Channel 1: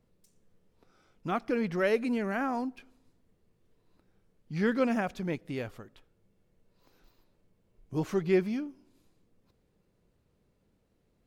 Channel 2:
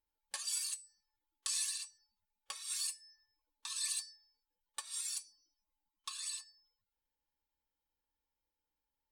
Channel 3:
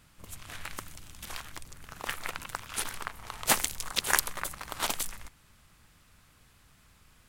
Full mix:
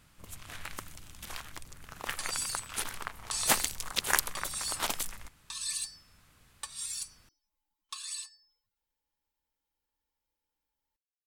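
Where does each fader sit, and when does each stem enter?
mute, +2.5 dB, -1.5 dB; mute, 1.85 s, 0.00 s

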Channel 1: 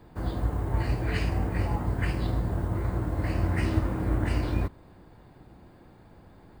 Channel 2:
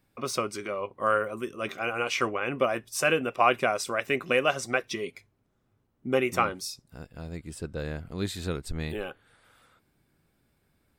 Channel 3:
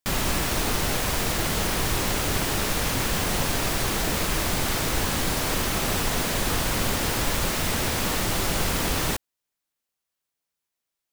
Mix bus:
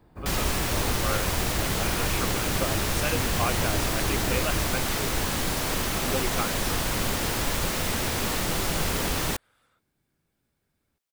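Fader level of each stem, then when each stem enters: -6.0 dB, -7.0 dB, -2.0 dB; 0.00 s, 0.00 s, 0.20 s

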